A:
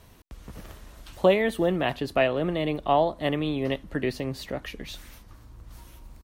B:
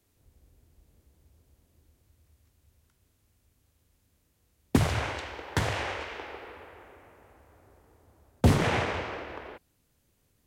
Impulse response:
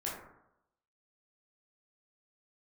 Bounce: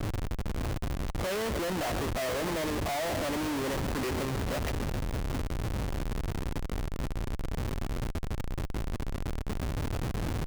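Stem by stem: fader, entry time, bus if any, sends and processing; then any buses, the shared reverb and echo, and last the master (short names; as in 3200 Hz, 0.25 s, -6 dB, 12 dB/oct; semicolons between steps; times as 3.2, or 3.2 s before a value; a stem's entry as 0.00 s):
-0.5 dB, 0.00 s, send -23 dB, echo send -17.5 dB, Wiener smoothing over 15 samples; hard clip -22.5 dBFS, distortion -7 dB
-1.5 dB, 0.00 s, no send, no echo send, infinite clipping; EQ curve 110 Hz 0 dB, 180 Hz -23 dB, 270 Hz -4 dB, 420 Hz -5 dB, 1300 Hz -18 dB, 2600 Hz -12 dB, 3800 Hz -7 dB, 9700 Hz +4 dB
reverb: on, RT60 0.85 s, pre-delay 13 ms
echo: feedback echo 0.148 s, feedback 41%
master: overdrive pedal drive 17 dB, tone 2300 Hz, clips at -17 dBFS; Schmitt trigger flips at -32.5 dBFS; mismatched tape noise reduction decoder only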